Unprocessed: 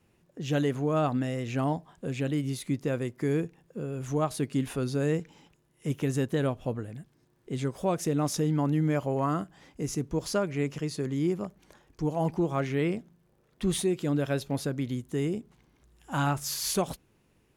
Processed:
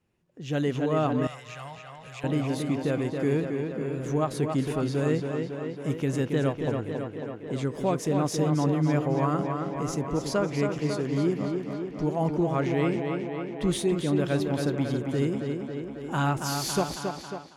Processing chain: high shelf 11000 Hz -10.5 dB; on a send: tape echo 0.275 s, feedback 77%, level -4 dB, low-pass 4600 Hz; on the sum: AGC gain up to 10 dB; 1.27–2.24 passive tone stack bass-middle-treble 10-0-10; gain -8.5 dB

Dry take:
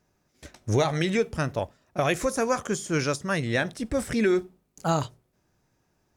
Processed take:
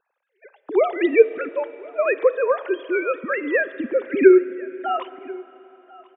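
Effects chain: sine-wave speech; echo 1.041 s -22.5 dB; reverb RT60 3.6 s, pre-delay 34 ms, DRR 15.5 dB; gain +6.5 dB

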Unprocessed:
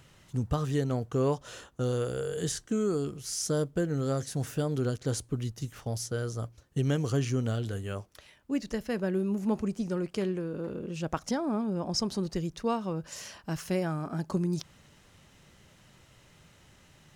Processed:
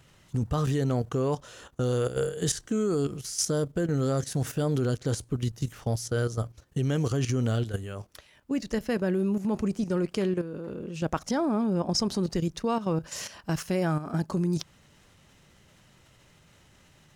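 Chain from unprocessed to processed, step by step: level quantiser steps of 11 dB; gain +7.5 dB

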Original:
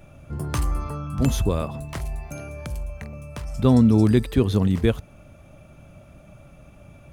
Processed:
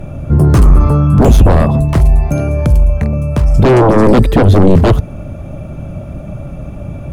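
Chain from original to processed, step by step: sine folder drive 15 dB, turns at -5.5 dBFS; tilt shelf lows +7 dB; gain -2.5 dB

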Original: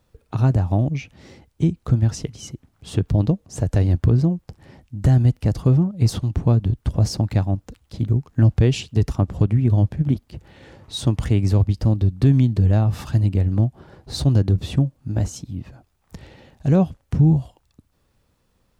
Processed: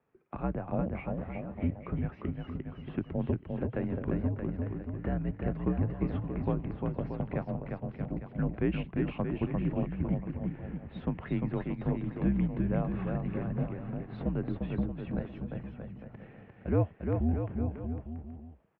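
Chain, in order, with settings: bouncing-ball echo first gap 0.35 s, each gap 0.8×, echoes 5; mistuned SSB -75 Hz 200–2500 Hz; gain -7 dB

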